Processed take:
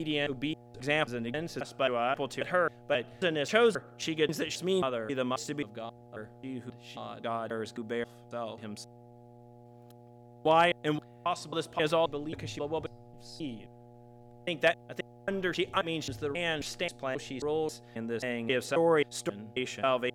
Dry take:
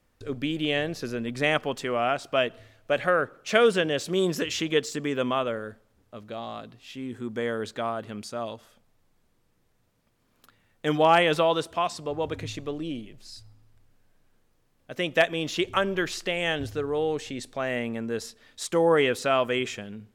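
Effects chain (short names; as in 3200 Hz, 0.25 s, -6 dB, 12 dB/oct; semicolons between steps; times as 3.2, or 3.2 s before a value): slices in reverse order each 0.268 s, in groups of 3; buzz 120 Hz, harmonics 7, -49 dBFS -3 dB/oct; gain -4.5 dB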